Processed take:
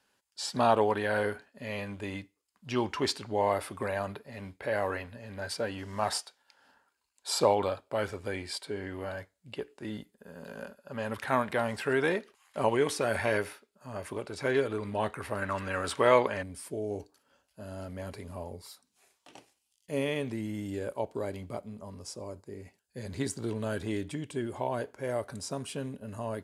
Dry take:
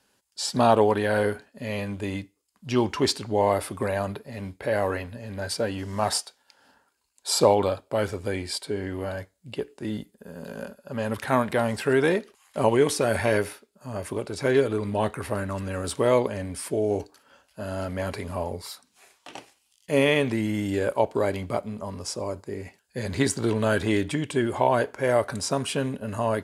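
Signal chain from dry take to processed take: peaking EQ 1.6 kHz +5.5 dB 2.9 oct, from 15.42 s +13.5 dB, from 16.43 s -4.5 dB; trim -8.5 dB

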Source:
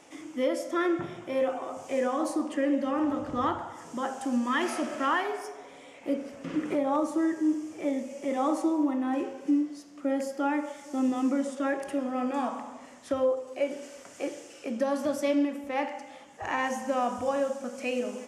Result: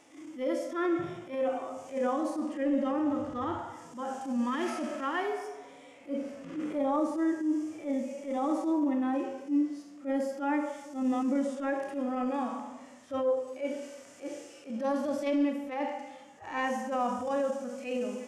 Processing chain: transient shaper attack -12 dB, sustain +3 dB; harmonic-percussive split percussive -16 dB

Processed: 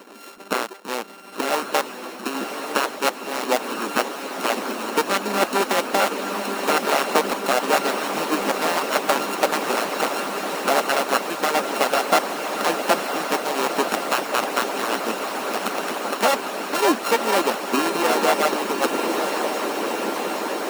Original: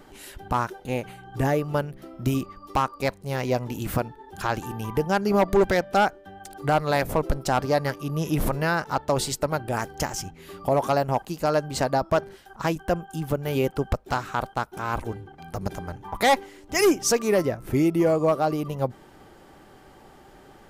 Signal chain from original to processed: sorted samples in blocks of 32 samples; in parallel at +1.5 dB: compression, threshold -36 dBFS, peak gain reduction 18.5 dB; on the sum: elliptic high-pass 210 Hz, stop band 40 dB; on a send: echo that smears into a reverb 1090 ms, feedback 79%, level -5 dB; on the sum: harmonic-percussive split harmonic -13 dB; trim +6 dB

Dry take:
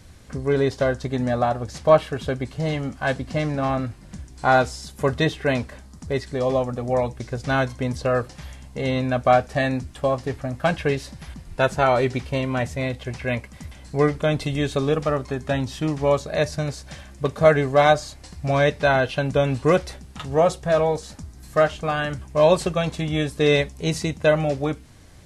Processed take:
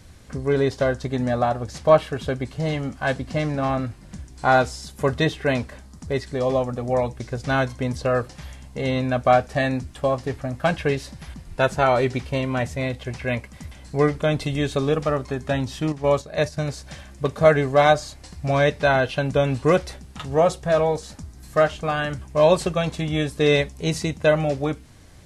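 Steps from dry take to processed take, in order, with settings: 15.92–16.57 s: gate -23 dBFS, range -7 dB

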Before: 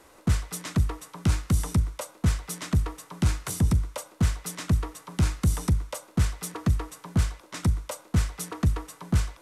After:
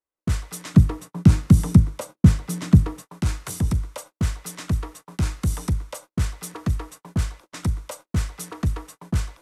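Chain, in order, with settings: gate -42 dBFS, range -41 dB; 0.74–3.02 s: peaking EQ 170 Hz +13.5 dB 2.3 oct

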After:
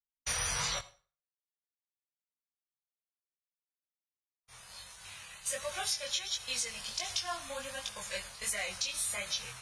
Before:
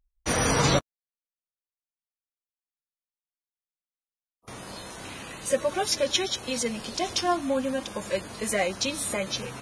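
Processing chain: expander -34 dBFS; amplifier tone stack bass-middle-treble 10-0-10; compression 6:1, threshold -32 dBFS, peak gain reduction 11 dB; chorus 1.4 Hz, delay 18.5 ms, depth 6.6 ms; on a send: reverberation RT60 0.40 s, pre-delay 57 ms, DRR 18 dB; on the sum: trim +4.5 dB

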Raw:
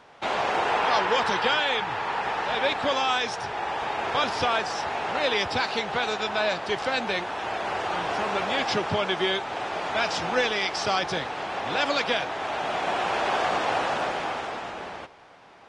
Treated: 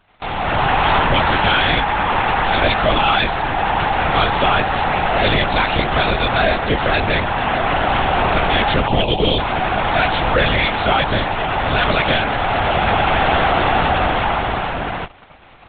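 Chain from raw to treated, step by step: spectral selection erased 8.88–9.39 s, 960–2400 Hz; waveshaping leveller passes 3; level rider gain up to 11 dB; LPC vocoder at 8 kHz whisper; trim -7 dB

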